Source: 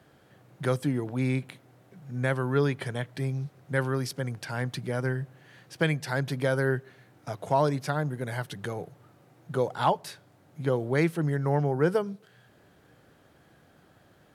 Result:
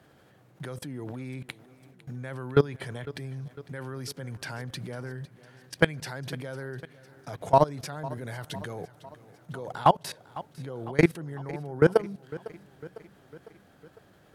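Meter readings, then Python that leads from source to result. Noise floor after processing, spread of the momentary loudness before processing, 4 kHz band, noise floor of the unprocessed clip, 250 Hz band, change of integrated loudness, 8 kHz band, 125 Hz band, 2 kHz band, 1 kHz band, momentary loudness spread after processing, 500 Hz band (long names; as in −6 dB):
−59 dBFS, 11 LU, 0.0 dB, −60 dBFS, −2.0 dB, −1.0 dB, −0.5 dB, −4.5 dB, −2.0 dB, +2.5 dB, 21 LU, 0.0 dB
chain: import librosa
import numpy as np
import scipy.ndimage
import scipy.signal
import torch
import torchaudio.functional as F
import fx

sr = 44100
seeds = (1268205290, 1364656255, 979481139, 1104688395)

y = fx.level_steps(x, sr, step_db=22)
y = fx.echo_feedback(y, sr, ms=503, feedback_pct=57, wet_db=-18.5)
y = F.gain(torch.from_numpy(y), 7.0).numpy()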